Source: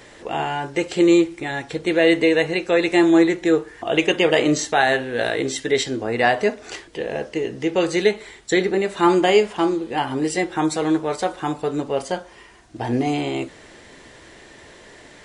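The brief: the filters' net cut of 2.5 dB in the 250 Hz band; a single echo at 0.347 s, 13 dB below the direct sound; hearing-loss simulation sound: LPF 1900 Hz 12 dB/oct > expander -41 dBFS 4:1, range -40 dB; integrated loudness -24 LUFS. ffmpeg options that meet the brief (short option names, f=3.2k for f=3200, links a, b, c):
-af "lowpass=1.9k,equalizer=f=250:t=o:g=-4,aecho=1:1:347:0.224,agate=range=-40dB:threshold=-41dB:ratio=4,volume=-2dB"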